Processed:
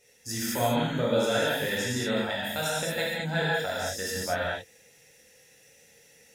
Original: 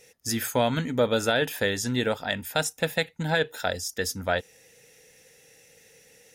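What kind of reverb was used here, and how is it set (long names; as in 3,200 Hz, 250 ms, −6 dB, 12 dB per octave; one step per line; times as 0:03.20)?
reverb whose tail is shaped and stops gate 250 ms flat, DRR −7.5 dB
level −9.5 dB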